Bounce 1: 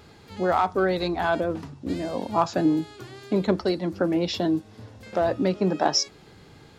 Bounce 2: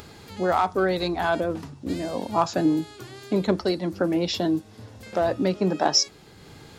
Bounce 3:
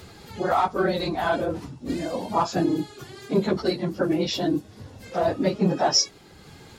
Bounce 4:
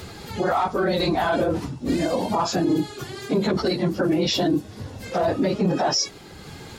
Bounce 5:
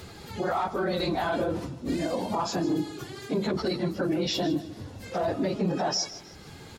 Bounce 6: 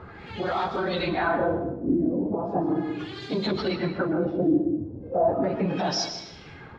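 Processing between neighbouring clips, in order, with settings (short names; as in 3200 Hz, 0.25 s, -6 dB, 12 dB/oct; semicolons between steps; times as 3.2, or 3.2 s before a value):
high shelf 6600 Hz +8 dB; upward compressor, threshold -39 dBFS
phase scrambler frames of 50 ms
limiter -20.5 dBFS, peak gain reduction 11.5 dB; gain +7 dB
feedback echo 0.156 s, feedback 33%, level -15 dB; gain -6 dB
LFO low-pass sine 0.37 Hz 320–4200 Hz; on a send at -7.5 dB: reverb RT60 0.75 s, pre-delay 0.112 s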